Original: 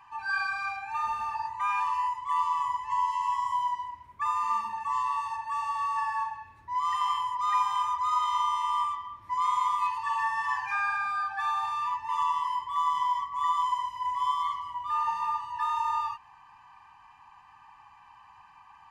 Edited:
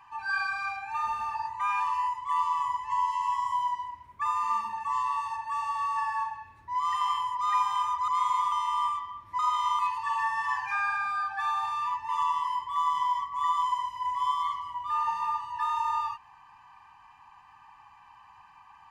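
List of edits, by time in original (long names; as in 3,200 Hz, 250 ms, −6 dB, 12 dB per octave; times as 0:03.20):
0:08.08–0:08.48: swap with 0:09.35–0:09.79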